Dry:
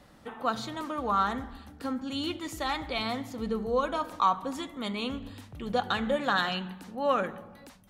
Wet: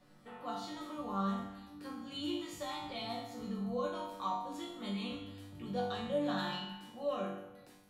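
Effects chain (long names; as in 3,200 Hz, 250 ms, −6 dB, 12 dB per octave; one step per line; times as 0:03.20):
dynamic equaliser 1,500 Hz, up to −7 dB, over −39 dBFS, Q 0.76
resonators tuned to a chord G2 minor, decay 0.74 s
convolution reverb, pre-delay 5 ms, DRR 4.5 dB
level +9 dB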